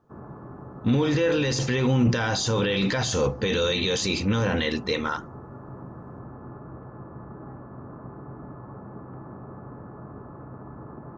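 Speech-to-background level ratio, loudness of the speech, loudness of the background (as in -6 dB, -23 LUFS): 18.0 dB, -24.0 LUFS, -42.0 LUFS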